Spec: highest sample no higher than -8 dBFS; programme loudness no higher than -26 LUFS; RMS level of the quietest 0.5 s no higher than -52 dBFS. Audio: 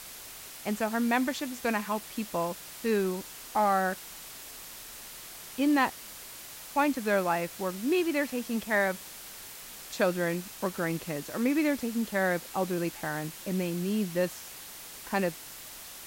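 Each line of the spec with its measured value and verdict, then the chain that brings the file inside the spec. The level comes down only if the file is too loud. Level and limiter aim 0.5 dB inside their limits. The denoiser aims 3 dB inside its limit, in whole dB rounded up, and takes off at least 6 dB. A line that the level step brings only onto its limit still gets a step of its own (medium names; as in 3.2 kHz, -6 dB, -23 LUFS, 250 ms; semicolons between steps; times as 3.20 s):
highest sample -13.5 dBFS: pass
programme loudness -30.0 LUFS: pass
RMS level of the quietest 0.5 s -45 dBFS: fail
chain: noise reduction 10 dB, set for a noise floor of -45 dBFS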